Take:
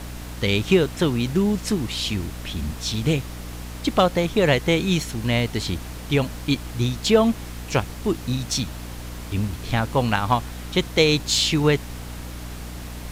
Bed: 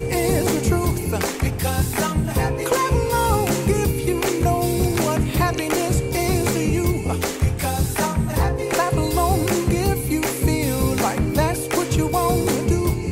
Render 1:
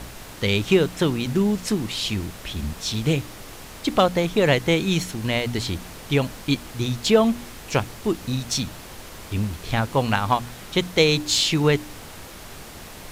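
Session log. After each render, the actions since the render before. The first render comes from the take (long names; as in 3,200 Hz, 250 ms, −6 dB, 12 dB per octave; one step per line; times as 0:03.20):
hum removal 60 Hz, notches 5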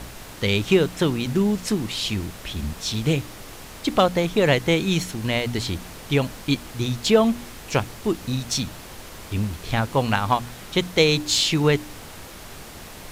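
no processing that can be heard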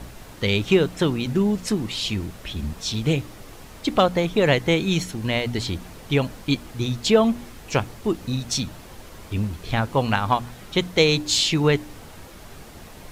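broadband denoise 6 dB, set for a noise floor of −40 dBFS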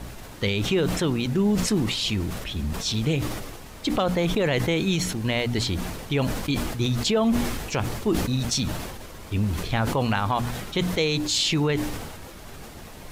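brickwall limiter −14 dBFS, peak gain reduction 8.5 dB
level that may fall only so fast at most 40 dB per second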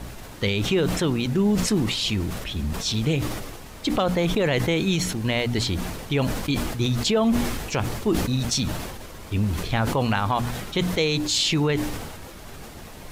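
level +1 dB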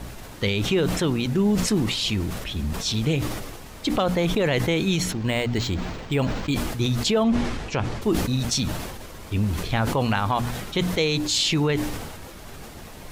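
0:05.12–0:06.54: linearly interpolated sample-rate reduction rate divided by 4×
0:07.23–0:08.02: high-frequency loss of the air 89 metres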